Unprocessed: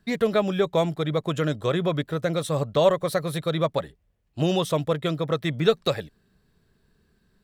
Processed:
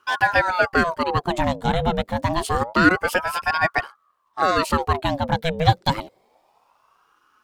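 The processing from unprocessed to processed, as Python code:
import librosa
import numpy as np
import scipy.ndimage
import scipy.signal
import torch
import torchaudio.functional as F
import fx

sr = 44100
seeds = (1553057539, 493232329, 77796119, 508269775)

y = fx.ring_lfo(x, sr, carrier_hz=800.0, swing_pct=60, hz=0.27)
y = F.gain(torch.from_numpy(y), 6.0).numpy()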